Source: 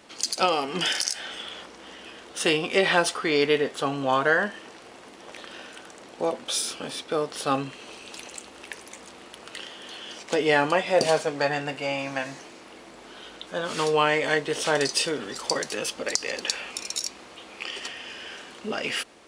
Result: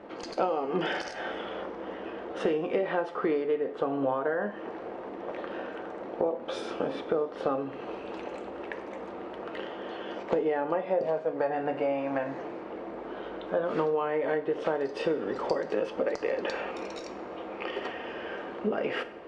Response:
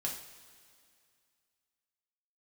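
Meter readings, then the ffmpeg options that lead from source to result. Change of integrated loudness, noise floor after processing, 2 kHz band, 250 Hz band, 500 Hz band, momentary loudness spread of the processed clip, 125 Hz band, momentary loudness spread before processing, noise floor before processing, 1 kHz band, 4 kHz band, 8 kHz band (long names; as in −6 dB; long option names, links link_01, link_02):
−6.5 dB, −41 dBFS, −10.0 dB, −1.5 dB, −1.5 dB, 11 LU, −6.5 dB, 21 LU, −47 dBFS, −5.0 dB, −16.0 dB, below −25 dB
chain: -filter_complex "[0:a]lowpass=1500,equalizer=frequency=480:width_type=o:width=1.6:gain=7.5,acompressor=threshold=-28dB:ratio=10,asplit=2[link_01][link_02];[1:a]atrim=start_sample=2205,asetrate=48510,aresample=44100[link_03];[link_02][link_03]afir=irnorm=-1:irlink=0,volume=-5dB[link_04];[link_01][link_04]amix=inputs=2:normalize=0"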